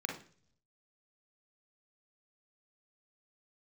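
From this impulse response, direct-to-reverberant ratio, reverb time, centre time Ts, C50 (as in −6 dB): 0.5 dB, 0.50 s, 26 ms, 6.0 dB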